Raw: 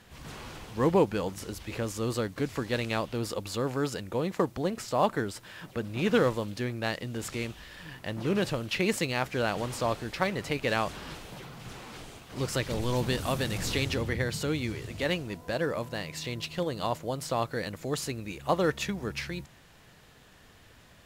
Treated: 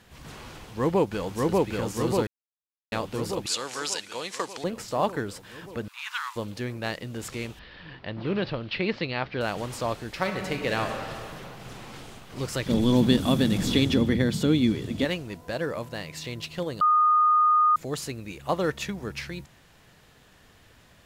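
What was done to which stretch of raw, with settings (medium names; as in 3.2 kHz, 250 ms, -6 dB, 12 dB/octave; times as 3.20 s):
0.52–1.69 s: echo throw 590 ms, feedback 70%, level -0.5 dB
2.27–2.92 s: mute
3.46–4.64 s: frequency weighting ITU-R 468
5.88–6.36 s: steep high-pass 910 Hz 72 dB/octave
7.59–9.41 s: steep low-pass 4.7 kHz 48 dB/octave
10.11–12.08 s: reverb throw, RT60 2.3 s, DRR 4 dB
12.66–15.05 s: small resonant body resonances 230/3400 Hz, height 15 dB, ringing for 25 ms
16.81–17.76 s: bleep 1.23 kHz -16.5 dBFS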